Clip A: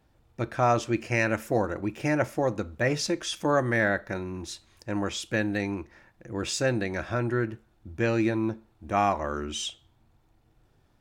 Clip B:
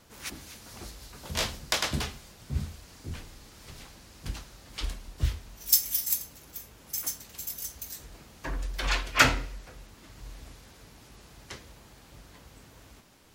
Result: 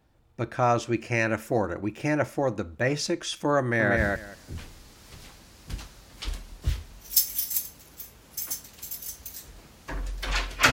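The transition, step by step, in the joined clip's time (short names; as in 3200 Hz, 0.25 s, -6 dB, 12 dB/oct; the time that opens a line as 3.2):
clip A
3.6–3.97 echo throw 0.19 s, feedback 15%, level -2 dB
3.97 switch to clip B from 2.53 s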